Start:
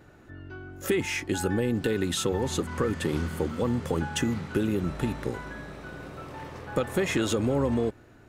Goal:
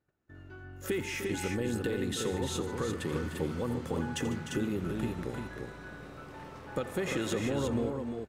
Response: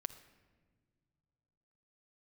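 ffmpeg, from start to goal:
-af "aecho=1:1:85|148|301|347:0.188|0.158|0.299|0.562,agate=range=0.0794:threshold=0.00355:ratio=16:detection=peak,volume=0.447"

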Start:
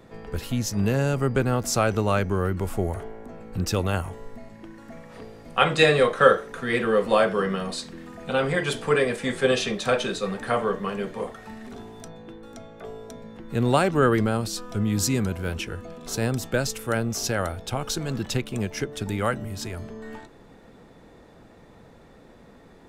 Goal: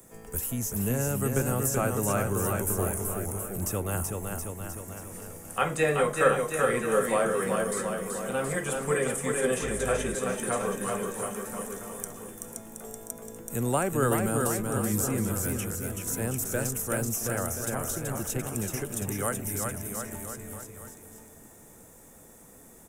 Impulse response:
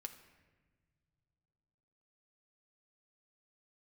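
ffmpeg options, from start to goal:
-filter_complex "[0:a]acrossover=split=120|1300|2700[s0][s1][s2][s3];[s3]acompressor=threshold=0.00398:ratio=6[s4];[s0][s1][s2][s4]amix=inputs=4:normalize=0,aexciter=amount=9.1:drive=9.7:freq=6600,aecho=1:1:380|722|1030|1307|1556:0.631|0.398|0.251|0.158|0.1,asettb=1/sr,asplit=3[s5][s6][s7];[s5]atrim=end=9.634[s8];[s6]atrim=start=9.63:end=10.15,asetpts=PTS-STARTPTS,afade=t=in:d=0.004:c=qsin,afade=t=out:st=0.516:d=0.004:c=qsin,aeval=exprs='val(0)+0.0316*(sin(2*PI*50*n/s)+sin(2*PI*2*50*n/s)/2+sin(2*PI*3*50*n/s)/3+sin(2*PI*4*50*n/s)/4+sin(2*PI*5*50*n/s)/5)':c=same[s9];[s7]atrim=start=10.146[s10];[s8][s9]acrossfade=d=0.004:c1=hsin:c2=qsin[s11];[s11][s10]acrossfade=d=0.004:c1=qsin:c2=hsin,volume=0.473"

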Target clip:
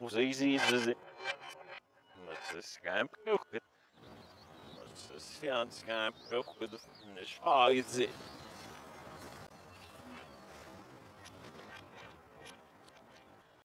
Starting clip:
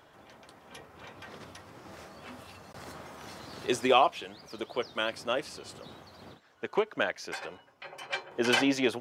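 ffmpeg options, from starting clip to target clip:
-af "areverse,atempo=0.66,volume=0.562"

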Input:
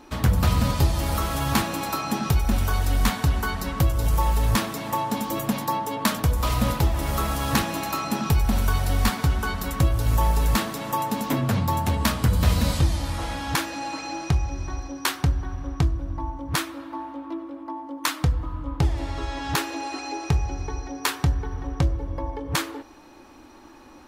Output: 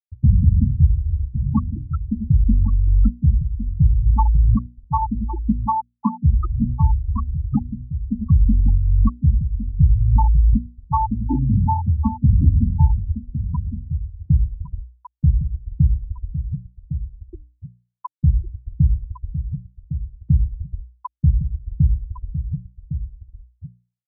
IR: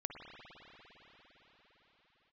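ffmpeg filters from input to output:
-filter_complex "[0:a]afftfilt=real='re*gte(hypot(re,im),0.447)':imag='im*gte(hypot(re,im),0.447)':win_size=1024:overlap=0.75,bandreject=f=60:t=h:w=6,bandreject=f=120:t=h:w=6,bandreject=f=180:t=h:w=6,bandreject=f=240:t=h:w=6,bandreject=f=300:t=h:w=6,asplit=2[s0][s1];[s1]adelay=1108,volume=0.316,highshelf=f=4000:g=-24.9[s2];[s0][s2]amix=inputs=2:normalize=0,volume=2.37"

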